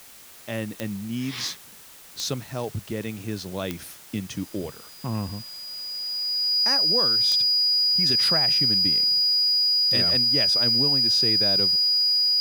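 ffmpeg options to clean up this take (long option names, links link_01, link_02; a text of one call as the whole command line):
ffmpeg -i in.wav -af "adeclick=threshold=4,bandreject=frequency=4900:width=30,afwtdn=0.0045" out.wav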